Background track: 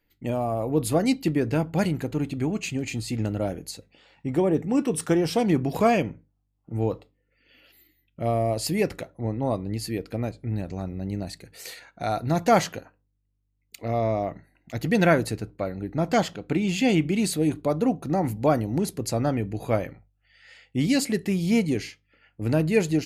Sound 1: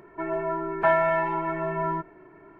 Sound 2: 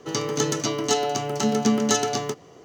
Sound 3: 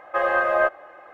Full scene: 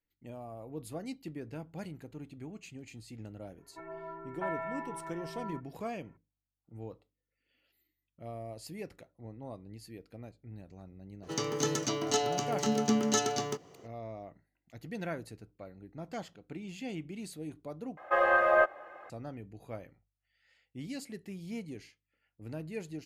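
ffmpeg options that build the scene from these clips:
-filter_complex "[0:a]volume=-18.5dB[a];[1:a]aecho=1:1:7.3:0.42[b];[a]asplit=2[c][d];[c]atrim=end=17.974[e];[3:a]atrim=end=1.13,asetpts=PTS-STARTPTS,volume=-4dB[f];[d]atrim=start=19.096[g];[b]atrim=end=2.59,asetpts=PTS-STARTPTS,volume=-17dB,afade=t=in:d=0.004:c=hsin,afade=t=out:st=2.586:d=0.004:c=hsin,adelay=3580[h];[2:a]atrim=end=2.64,asetpts=PTS-STARTPTS,volume=-7dB,afade=t=in:d=0.004:c=hsin,afade=t=out:st=2.636:d=0.004:c=hsin,adelay=11230[i];[e][f]acrossfade=d=0.004:c1=hsin:c2=hsin[j];[j][g]acrossfade=d=0.004:c1=hsin:c2=hsin[k];[k][h][i]amix=inputs=3:normalize=0"

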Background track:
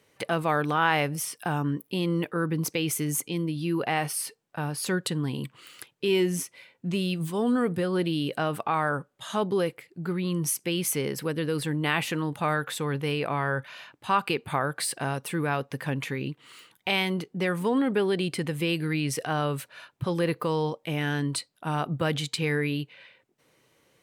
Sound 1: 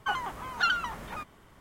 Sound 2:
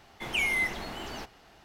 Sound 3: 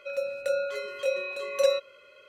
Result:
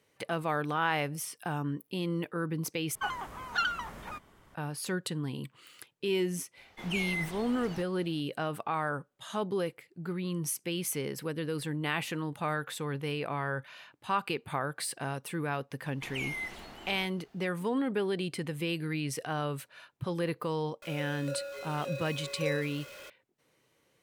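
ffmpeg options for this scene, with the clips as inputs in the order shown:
-filter_complex "[2:a]asplit=2[a][b];[0:a]volume=-6dB[c];[b]acrusher=bits=11:mix=0:aa=0.000001[d];[3:a]aeval=exprs='val(0)+0.5*0.0282*sgn(val(0))':c=same[e];[c]asplit=2[f][g];[f]atrim=end=2.954[h];[1:a]atrim=end=1.6,asetpts=PTS-STARTPTS,volume=-3.5dB[i];[g]atrim=start=4.546[j];[a]atrim=end=1.64,asetpts=PTS-STARTPTS,volume=-7dB,afade=t=in:d=0.004:c=hsin,afade=t=out:st=1.636:d=0.004:c=hsin,adelay=6570[k];[d]atrim=end=1.64,asetpts=PTS-STARTPTS,volume=-9.5dB,afade=t=in:d=0.004:c=hsin,afade=t=out:st=1.636:d=0.004:c=hsin,adelay=15810[l];[e]atrim=end=2.28,asetpts=PTS-STARTPTS,volume=-12.5dB,afade=t=in:d=0.004:c=hsin,afade=t=out:st=2.276:d=0.004:c=hsin,adelay=20820[m];[h][i]acrossfade=d=0.004:c1=hsin:c2=hsin[n];[n][j]acrossfade=d=0.004:c1=hsin:c2=hsin[o];[o][k][l][m]amix=inputs=4:normalize=0"

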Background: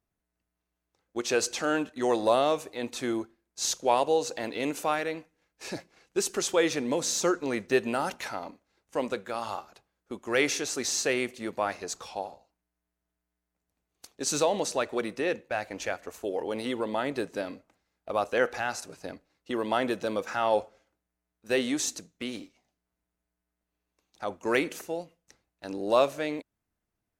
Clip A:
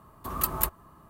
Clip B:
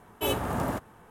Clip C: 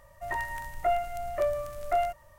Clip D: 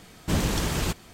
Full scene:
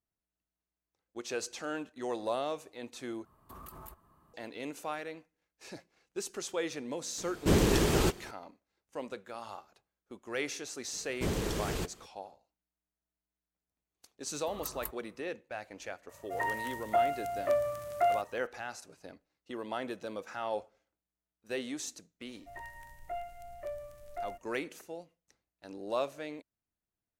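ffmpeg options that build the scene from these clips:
-filter_complex "[1:a]asplit=2[a][b];[4:a]asplit=2[c][d];[3:a]asplit=2[e][f];[0:a]volume=-10dB[g];[a]acompressor=threshold=-35dB:ratio=12:attack=8.2:release=34:knee=1:detection=rms[h];[c]equalizer=f=390:t=o:w=0.77:g=10.5[i];[d]equalizer=f=430:t=o:w=0.65:g=9[j];[e]highpass=f=80:w=0.5412,highpass=f=80:w=1.3066[k];[f]equalizer=f=1.2k:t=o:w=0.51:g=-6.5[l];[g]asplit=2[m][n];[m]atrim=end=3.254[o];[h]atrim=end=1.09,asetpts=PTS-STARTPTS,volume=-11.5dB[p];[n]atrim=start=4.336[q];[i]atrim=end=1.13,asetpts=PTS-STARTPTS,volume=-2.5dB,afade=t=in:d=0.004:c=hsin,afade=t=out:st=1.126:d=0.004:c=hsin,adelay=7180[r];[j]atrim=end=1.13,asetpts=PTS-STARTPTS,volume=-9.5dB,afade=t=in:d=0.004:c=hsin,afade=t=out:st=1.126:d=0.004:c=hsin,adelay=10930[s];[b]atrim=end=1.09,asetpts=PTS-STARTPTS,volume=-15dB,afade=t=in:d=0.004:c=hsin,afade=t=out:st=1.086:d=0.004:c=hsin,adelay=14220[t];[k]atrim=end=2.38,asetpts=PTS-STARTPTS,volume=-1dB,afade=t=in:d=0.004:c=hsin,afade=t=out:st=2.376:d=0.004:c=hsin,adelay=16090[u];[l]atrim=end=2.38,asetpts=PTS-STARTPTS,volume=-12.5dB,afade=t=in:d=0.004:c=hsin,afade=t=out:st=2.376:d=0.004:c=hsin,adelay=22250[v];[o][p]acrossfade=d=0.004:c1=hsin:c2=hsin[w];[w][q]acrossfade=d=0.004:c1=hsin:c2=hsin[x];[x][r][s][t][u][v]amix=inputs=6:normalize=0"

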